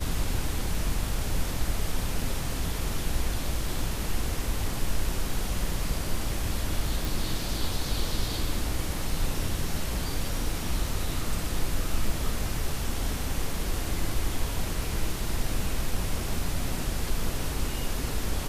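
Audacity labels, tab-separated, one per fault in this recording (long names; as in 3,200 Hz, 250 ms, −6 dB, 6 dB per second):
7.050000	7.050000	click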